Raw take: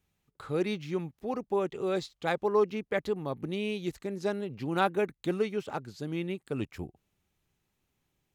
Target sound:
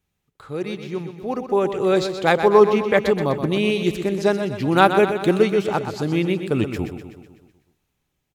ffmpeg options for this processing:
ffmpeg -i in.wav -filter_complex "[0:a]dynaudnorm=framelen=230:gausssize=13:maxgain=13dB,asplit=2[link_01][link_02];[link_02]aecho=0:1:125|250|375|500|625|750|875:0.355|0.199|0.111|0.0623|0.0349|0.0195|0.0109[link_03];[link_01][link_03]amix=inputs=2:normalize=0,volume=1dB" out.wav

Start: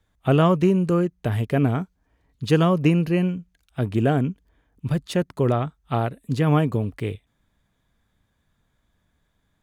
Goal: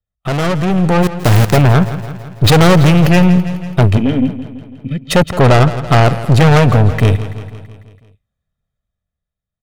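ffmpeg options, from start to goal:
ffmpeg -i in.wav -filter_complex "[0:a]asettb=1/sr,asplit=3[link_01][link_02][link_03];[link_01]atrim=end=2.444[link_04];[link_02]atrim=start=2.44:end=3.07,asetpts=PTS-STARTPTS,afade=type=in:duration=0.004:curve=qsin,afade=type=out:start_time=0.626:duration=0.004:curve=qsin,aeval=exprs='val(0)+0.5*0.0447*sgn(val(0))':channel_layout=same[link_05];[link_03]atrim=start=3.066[link_06];[link_04][link_05]acrossfade=duration=0.004:curve1=hsin:curve2=qsin[link_07];[link_07][link_06]acrossfade=duration=0.004:curve1=qsin:curve2=hsin,asplit=2[link_08][link_09];[link_09]adynamicsmooth=sensitivity=7.5:basefreq=780,volume=-3dB[link_10];[link_08][link_10]amix=inputs=2:normalize=0,aecho=1:1:1.6:0.69,asplit=3[link_11][link_12][link_13];[link_11]afade=type=out:start_time=1.02:duration=0.02[link_14];[link_12]aeval=exprs='val(0)*gte(abs(val(0)),0.0891)':channel_layout=same,afade=type=in:start_time=1.02:duration=0.02,afade=type=out:start_time=1.56:duration=0.02[link_15];[link_13]afade=type=in:start_time=1.56:duration=0.02[link_16];[link_14][link_15][link_16]amix=inputs=3:normalize=0,asplit=3[link_17][link_18][link_19];[link_17]afade=type=out:start_time=3.96:duration=0.02[link_20];[link_18]asplit=3[link_21][link_22][link_23];[link_21]bandpass=frequency=270:width_type=q:width=8,volume=0dB[link_24];[link_22]bandpass=frequency=2290:width_type=q:width=8,volume=-6dB[link_25];[link_23]bandpass=frequency=3010:width_type=q:width=8,volume=-9dB[link_26];[link_24][link_25][link_26]amix=inputs=3:normalize=0,afade=type=in:start_time=3.96:duration=0.02,afade=type=out:start_time=5.1:duration=0.02[link_27];[link_19]afade=type=in:start_time=5.1:duration=0.02[link_28];[link_20][link_27][link_28]amix=inputs=3:normalize=0,aeval=exprs='(tanh(14.1*val(0)+0.4)-tanh(0.4))/14.1':channel_layout=same,agate=range=-29dB:threshold=-51dB:ratio=16:detection=peak,dynaudnorm=framelen=110:gausssize=17:maxgain=9dB,aecho=1:1:166|332|498|664|830|996:0.2|0.118|0.0695|0.041|0.0242|0.0143,alimiter=level_in=9dB:limit=-1dB:release=50:level=0:latency=1,volume=-1dB" out.wav

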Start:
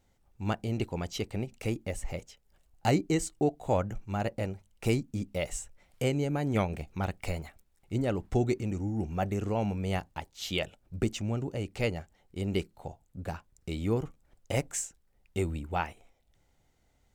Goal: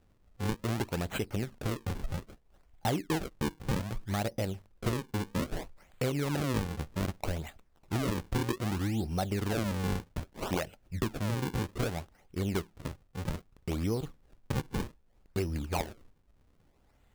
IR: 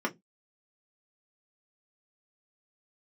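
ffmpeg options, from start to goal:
-af "acompressor=threshold=-32dB:ratio=4,acrusher=samples=39:mix=1:aa=0.000001:lfo=1:lforange=62.4:lforate=0.63,volume=3.5dB"

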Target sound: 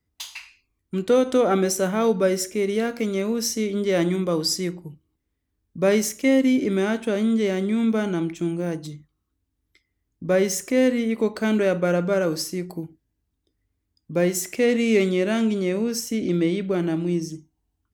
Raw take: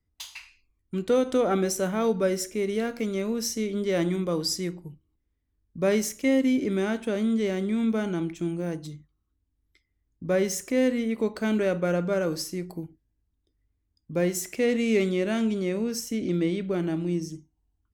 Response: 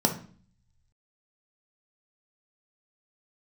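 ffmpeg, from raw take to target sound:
-af "highpass=frequency=98:poles=1,volume=4.5dB"

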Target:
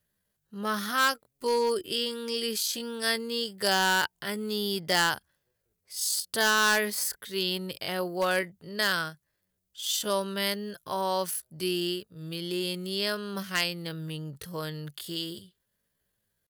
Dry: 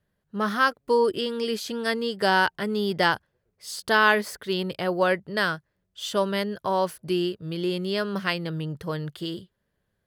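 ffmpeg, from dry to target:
ffmpeg -i in.wav -af "atempo=0.61,asoftclip=type=hard:threshold=-14dB,crystalizer=i=4.5:c=0,volume=-6.5dB" out.wav

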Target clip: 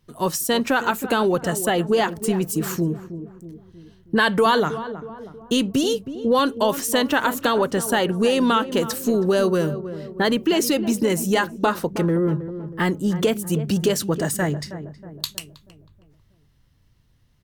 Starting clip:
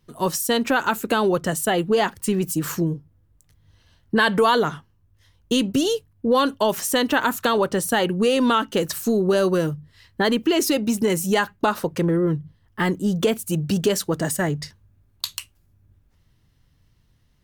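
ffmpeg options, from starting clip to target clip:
ffmpeg -i in.wav -filter_complex "[0:a]asplit=2[link_01][link_02];[link_02]adelay=319,lowpass=frequency=990:poles=1,volume=-11dB,asplit=2[link_03][link_04];[link_04]adelay=319,lowpass=frequency=990:poles=1,volume=0.53,asplit=2[link_05][link_06];[link_06]adelay=319,lowpass=frequency=990:poles=1,volume=0.53,asplit=2[link_07][link_08];[link_08]adelay=319,lowpass=frequency=990:poles=1,volume=0.53,asplit=2[link_09][link_10];[link_10]adelay=319,lowpass=frequency=990:poles=1,volume=0.53,asplit=2[link_11][link_12];[link_12]adelay=319,lowpass=frequency=990:poles=1,volume=0.53[link_13];[link_01][link_03][link_05][link_07][link_09][link_11][link_13]amix=inputs=7:normalize=0" out.wav

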